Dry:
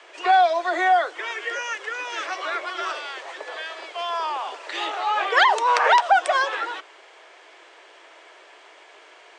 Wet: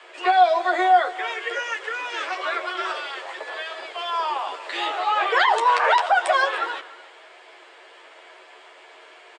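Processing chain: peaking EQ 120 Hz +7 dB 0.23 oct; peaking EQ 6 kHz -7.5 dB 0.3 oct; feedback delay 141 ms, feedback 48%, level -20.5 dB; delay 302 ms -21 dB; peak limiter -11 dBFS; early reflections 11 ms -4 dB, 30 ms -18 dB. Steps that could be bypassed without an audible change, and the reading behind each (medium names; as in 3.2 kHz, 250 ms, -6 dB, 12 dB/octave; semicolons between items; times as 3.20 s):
peaking EQ 120 Hz: input has nothing below 300 Hz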